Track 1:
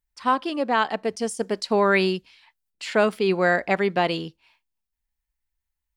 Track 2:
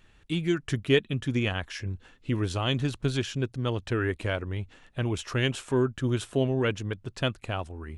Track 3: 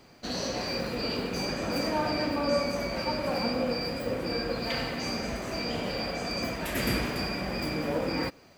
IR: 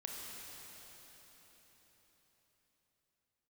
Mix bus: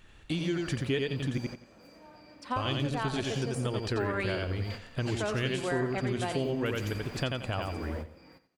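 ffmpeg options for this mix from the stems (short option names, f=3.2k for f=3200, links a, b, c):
-filter_complex "[0:a]adelay=2250,volume=-6dB,asplit=2[a][b];[b]volume=-10dB[c];[1:a]volume=2.5dB,asplit=3[d][e][f];[d]atrim=end=1.38,asetpts=PTS-STARTPTS,afade=t=out:st=1.376:d=0.004:c=hsin[g];[e]atrim=start=1.38:end=2.56,asetpts=PTS-STARTPTS,volume=0[h];[f]atrim=start=2.56,asetpts=PTS-STARTPTS,afade=t=in:d=0.004:c=hsin[i];[g][h][i]concat=n=3:v=0:a=1,asplit=3[j][k][l];[k]volume=-3.5dB[m];[2:a]volume=-10dB,asplit=2[n][o];[o]volume=-15.5dB[p];[l]apad=whole_len=378174[q];[n][q]sidechaingate=range=-33dB:threshold=-44dB:ratio=16:detection=peak[r];[c][m][p]amix=inputs=3:normalize=0,aecho=0:1:88|176|264:1|0.21|0.0441[s];[a][j][r][s]amix=inputs=4:normalize=0,acompressor=threshold=-30dB:ratio=3"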